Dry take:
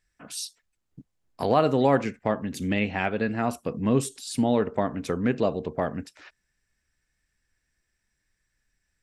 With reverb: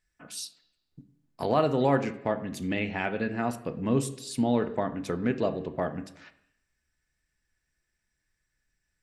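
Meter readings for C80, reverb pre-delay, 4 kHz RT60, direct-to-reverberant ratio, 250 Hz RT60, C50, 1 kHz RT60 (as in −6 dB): 16.5 dB, 3 ms, 0.90 s, 8.5 dB, 0.85 s, 14.5 dB, 0.85 s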